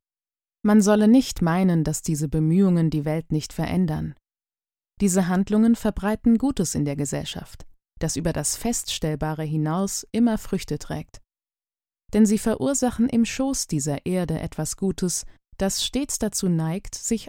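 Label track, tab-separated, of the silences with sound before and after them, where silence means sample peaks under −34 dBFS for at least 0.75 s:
4.110000	5.000000	silence
11.160000	12.130000	silence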